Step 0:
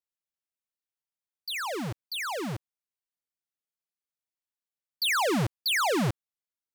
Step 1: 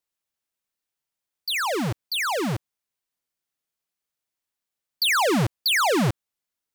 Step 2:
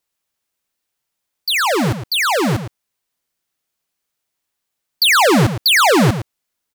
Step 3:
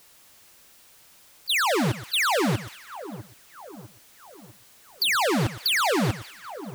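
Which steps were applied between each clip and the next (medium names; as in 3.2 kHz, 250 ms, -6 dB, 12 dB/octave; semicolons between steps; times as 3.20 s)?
compression, threshold -28 dBFS, peak gain reduction 2.5 dB; trim +7.5 dB
echo from a far wall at 19 m, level -10 dB; trim +8.5 dB
jump at every zero crossing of -28.5 dBFS; level held to a coarse grid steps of 16 dB; two-band feedback delay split 1.3 kHz, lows 650 ms, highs 196 ms, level -14.5 dB; trim -6.5 dB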